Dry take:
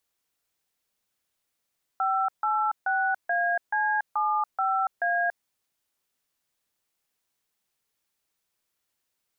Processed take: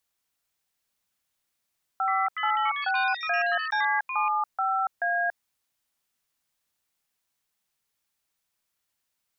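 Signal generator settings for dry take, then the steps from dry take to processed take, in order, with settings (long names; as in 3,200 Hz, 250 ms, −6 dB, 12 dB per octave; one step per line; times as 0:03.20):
touch tones "586AC75A", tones 284 ms, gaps 147 ms, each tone −25 dBFS
parametric band 400 Hz −5 dB 1 octave
delay with pitch and tempo change per echo 743 ms, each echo +7 semitones, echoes 3, each echo −6 dB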